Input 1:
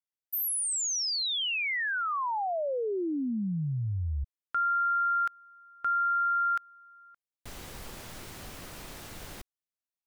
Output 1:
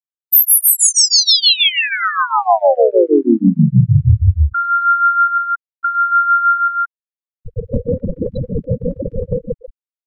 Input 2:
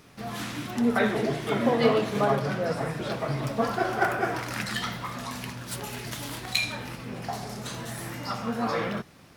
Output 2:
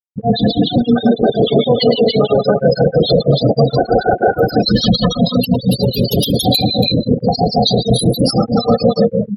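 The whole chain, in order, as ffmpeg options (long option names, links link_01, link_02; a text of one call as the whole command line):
ffmpeg -i in.wav -filter_complex "[0:a]highshelf=frequency=5600:gain=7.5,aecho=1:1:4:0.42,bandreject=frequency=50.79:width_type=h:width=4,bandreject=frequency=101.58:width_type=h:width=4,bandreject=frequency=152.37:width_type=h:width=4,bandreject=frequency=203.16:width_type=h:width=4,acrossover=split=90|1000|5800[link_01][link_02][link_03][link_04];[link_01]acompressor=threshold=-58dB:ratio=5[link_05];[link_02]acompressor=threshold=-38dB:ratio=4[link_06];[link_03]acompressor=threshold=-37dB:ratio=10[link_07];[link_04]acompressor=threshold=-36dB:ratio=2[link_08];[link_05][link_06][link_07][link_08]amix=inputs=4:normalize=0,equalizer=frequency=125:width_type=o:width=1:gain=6,equalizer=frequency=250:width_type=o:width=1:gain=-6,equalizer=frequency=500:width_type=o:width=1:gain=5,equalizer=frequency=1000:width_type=o:width=1:gain=-12,equalizer=frequency=2000:width_type=o:width=1:gain=-10,equalizer=frequency=4000:width_type=o:width=1:gain=4,equalizer=frequency=8000:width_type=o:width=1:gain=-12,asplit=2[link_09][link_10];[link_10]aecho=0:1:105|277:0.708|0.891[link_11];[link_09][link_11]amix=inputs=2:normalize=0,afftfilt=real='re*gte(hypot(re,im),0.0251)':imag='im*gte(hypot(re,im),0.0251)':win_size=1024:overlap=0.75,asplit=2[link_12][link_13];[link_13]acompressor=threshold=-44dB:ratio=8:attack=4.2:release=148:knee=1:detection=rms,volume=2dB[link_14];[link_12][link_14]amix=inputs=2:normalize=0,acrossover=split=1800[link_15][link_16];[link_15]aeval=exprs='val(0)*(1-1/2+1/2*cos(2*PI*6.3*n/s))':channel_layout=same[link_17];[link_16]aeval=exprs='val(0)*(1-1/2-1/2*cos(2*PI*6.3*n/s))':channel_layout=same[link_18];[link_17][link_18]amix=inputs=2:normalize=0,alimiter=level_in=28dB:limit=-1dB:release=50:level=0:latency=1,volume=-1dB" out.wav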